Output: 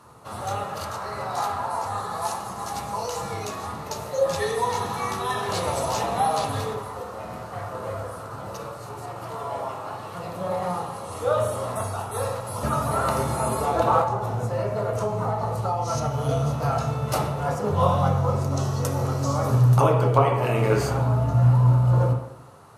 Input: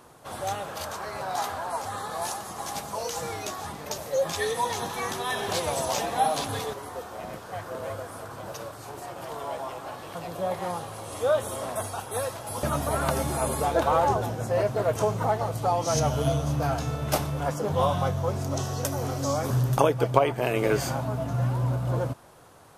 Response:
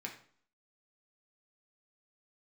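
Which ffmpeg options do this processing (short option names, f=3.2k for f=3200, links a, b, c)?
-filter_complex "[1:a]atrim=start_sample=2205,asetrate=24255,aresample=44100[a];[0:a][a]afir=irnorm=-1:irlink=0,asettb=1/sr,asplit=3[b][c][d];[b]atrim=end=14.014[e];[c]atrim=start=14.01:end=16.29,asetpts=PTS-STARTPTS,afade=t=in:d=0.004:c=qsin,afade=t=out:st=2.276:d=0.004:c=qsin,acompressor=threshold=-22dB:ratio=6[f];[d]atrim=start=16.286[g];[e][f]acrossfade=d=0.004:c1=hsin:c2=qsin[h];[h][g]acrossfade=d=0.004:c1=qsin:c2=hsin"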